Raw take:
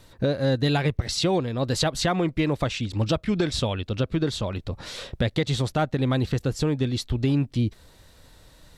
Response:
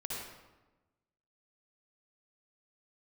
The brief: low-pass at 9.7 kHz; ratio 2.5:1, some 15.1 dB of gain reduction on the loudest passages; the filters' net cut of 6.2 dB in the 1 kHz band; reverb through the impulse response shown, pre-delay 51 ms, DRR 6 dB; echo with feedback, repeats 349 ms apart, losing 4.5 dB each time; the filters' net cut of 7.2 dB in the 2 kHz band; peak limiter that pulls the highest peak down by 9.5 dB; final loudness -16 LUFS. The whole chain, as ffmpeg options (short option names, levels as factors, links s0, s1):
-filter_complex "[0:a]lowpass=9700,equalizer=f=1000:t=o:g=-8,equalizer=f=2000:t=o:g=-7,acompressor=threshold=0.00631:ratio=2.5,alimiter=level_in=3.98:limit=0.0631:level=0:latency=1,volume=0.251,aecho=1:1:349|698|1047|1396|1745|2094|2443|2792|3141:0.596|0.357|0.214|0.129|0.0772|0.0463|0.0278|0.0167|0.01,asplit=2[s0][s1];[1:a]atrim=start_sample=2205,adelay=51[s2];[s1][s2]afir=irnorm=-1:irlink=0,volume=0.422[s3];[s0][s3]amix=inputs=2:normalize=0,volume=20"